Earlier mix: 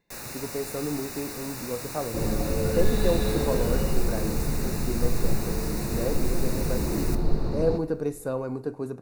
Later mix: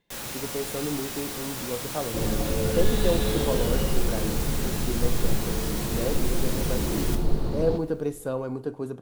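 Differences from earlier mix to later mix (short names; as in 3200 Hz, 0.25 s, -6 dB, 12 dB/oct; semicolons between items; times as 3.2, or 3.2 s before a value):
first sound: send +8.5 dB; master: remove Butterworth band-stop 3200 Hz, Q 3.6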